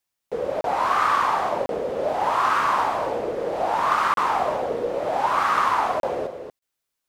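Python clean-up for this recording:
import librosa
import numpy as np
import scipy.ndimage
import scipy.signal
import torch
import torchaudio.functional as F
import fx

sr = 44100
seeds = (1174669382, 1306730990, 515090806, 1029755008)

y = fx.fix_declip(x, sr, threshold_db=-11.0)
y = fx.fix_interpolate(y, sr, at_s=(0.61, 1.66, 4.14, 6.0, 6.59), length_ms=32.0)
y = fx.fix_echo_inverse(y, sr, delay_ms=233, level_db=-8.0)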